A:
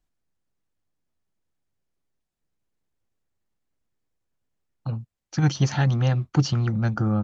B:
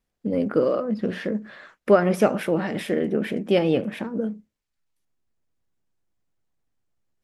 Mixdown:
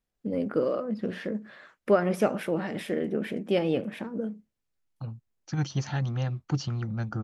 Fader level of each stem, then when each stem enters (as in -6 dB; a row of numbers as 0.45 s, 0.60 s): -8.0 dB, -5.5 dB; 0.15 s, 0.00 s